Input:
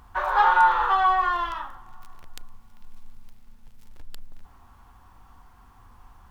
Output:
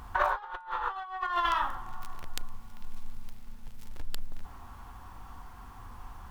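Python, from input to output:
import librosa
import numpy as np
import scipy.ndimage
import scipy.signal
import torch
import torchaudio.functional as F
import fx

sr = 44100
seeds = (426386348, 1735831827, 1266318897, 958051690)

y = fx.over_compress(x, sr, threshold_db=-28.0, ratio=-0.5)
y = fx.low_shelf(y, sr, hz=440.0, db=-7.0, at=(0.94, 1.62))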